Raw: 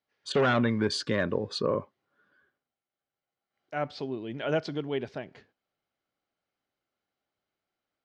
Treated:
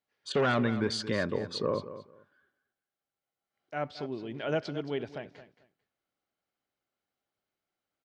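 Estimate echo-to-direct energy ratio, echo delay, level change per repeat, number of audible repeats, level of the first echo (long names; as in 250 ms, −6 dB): −13.5 dB, 222 ms, −14.5 dB, 2, −13.5 dB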